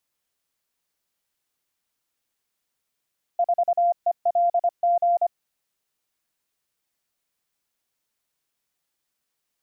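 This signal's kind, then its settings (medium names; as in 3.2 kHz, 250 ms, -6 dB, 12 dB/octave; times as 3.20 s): Morse "4ELG" 25 wpm 694 Hz -16.5 dBFS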